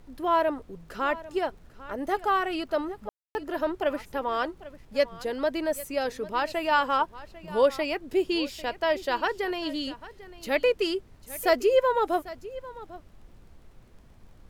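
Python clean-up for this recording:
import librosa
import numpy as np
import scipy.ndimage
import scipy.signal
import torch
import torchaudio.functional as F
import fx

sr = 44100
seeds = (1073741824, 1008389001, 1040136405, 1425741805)

y = fx.fix_declick_ar(x, sr, threshold=6.5)
y = fx.fix_ambience(y, sr, seeds[0], print_start_s=13.72, print_end_s=14.22, start_s=3.09, end_s=3.35)
y = fx.noise_reduce(y, sr, print_start_s=13.72, print_end_s=14.22, reduce_db=20.0)
y = fx.fix_echo_inverse(y, sr, delay_ms=797, level_db=-17.5)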